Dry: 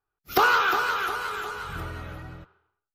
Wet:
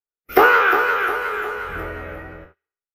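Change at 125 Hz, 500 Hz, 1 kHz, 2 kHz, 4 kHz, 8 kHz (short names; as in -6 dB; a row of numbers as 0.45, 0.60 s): 0.0 dB, +11.5 dB, +5.5 dB, +7.5 dB, -1.5 dB, n/a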